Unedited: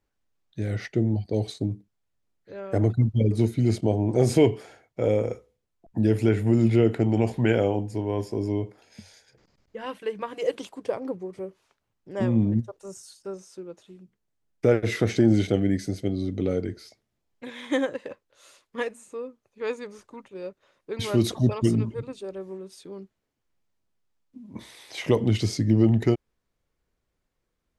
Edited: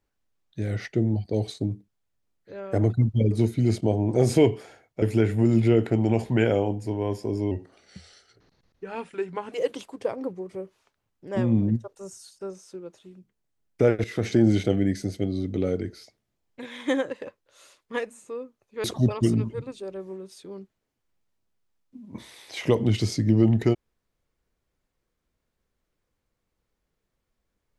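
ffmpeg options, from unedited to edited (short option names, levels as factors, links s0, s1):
-filter_complex "[0:a]asplit=6[s0][s1][s2][s3][s4][s5];[s0]atrim=end=5.022[s6];[s1]atrim=start=6.098:end=8.594[s7];[s2]atrim=start=8.59:end=10.36,asetpts=PTS-STARTPTS,asetrate=38808,aresample=44100,atrim=end_sample=88701,asetpts=PTS-STARTPTS[s8];[s3]atrim=start=10.356:end=14.88,asetpts=PTS-STARTPTS,afade=t=out:st=4.52:d=0.004:c=hsin:silence=0.199526[s9];[s4]atrim=start=14.88:end=19.682,asetpts=PTS-STARTPTS,afade=t=in:d=0.4:c=qsin:silence=0.199526[s10];[s5]atrim=start=21.248[s11];[s6][s7]acrossfade=d=0.004:c1=hsin:c2=hsin[s12];[s12][s8]acrossfade=d=0.004:c1=hsin:c2=hsin[s13];[s9][s10]concat=n=2:v=0:a=1[s14];[s13][s14]acrossfade=d=0.004:c1=hsin:c2=hsin[s15];[s15][s11]acrossfade=d=0.004:c1=hsin:c2=hsin"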